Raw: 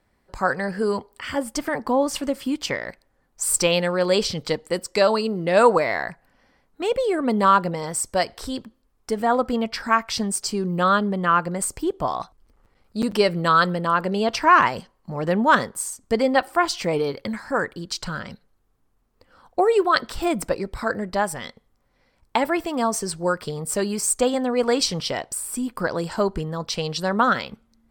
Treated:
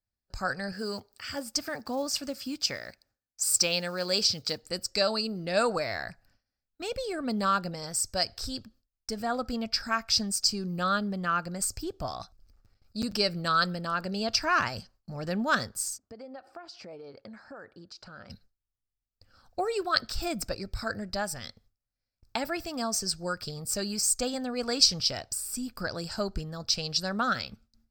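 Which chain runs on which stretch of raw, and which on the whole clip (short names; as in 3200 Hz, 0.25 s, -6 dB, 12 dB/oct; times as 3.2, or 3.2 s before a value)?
0.72–4.63 block floating point 7-bit + de-esser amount 20% + HPF 170 Hz 6 dB/oct
15.98–18.3 compressor 12:1, threshold -27 dBFS + band-pass 600 Hz, Q 0.78
whole clip: bell 460 Hz -13 dB 2.5 oct; gate with hold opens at -51 dBFS; thirty-one-band EQ 100 Hz +6 dB, 160 Hz -4 dB, 630 Hz +4 dB, 1000 Hz -11 dB, 2000 Hz -9 dB, 3150 Hz -8 dB, 5000 Hz +8 dB, 10000 Hz -12 dB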